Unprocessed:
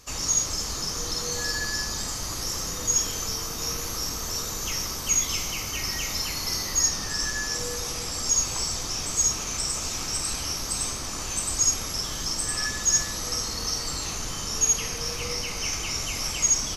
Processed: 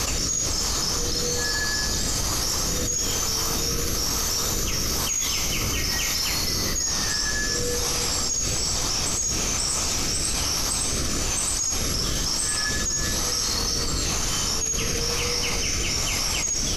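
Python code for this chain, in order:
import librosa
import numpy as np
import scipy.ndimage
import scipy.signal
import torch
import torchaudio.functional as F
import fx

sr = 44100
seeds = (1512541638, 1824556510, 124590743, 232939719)

y = fx.rotary(x, sr, hz=1.1)
y = fx.env_flatten(y, sr, amount_pct=100)
y = y * 10.0 ** (-5.5 / 20.0)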